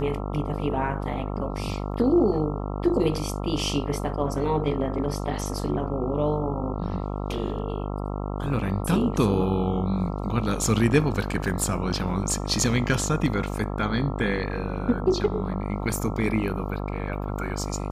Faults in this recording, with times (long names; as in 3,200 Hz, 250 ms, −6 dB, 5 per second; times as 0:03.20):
mains buzz 50 Hz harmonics 27 −30 dBFS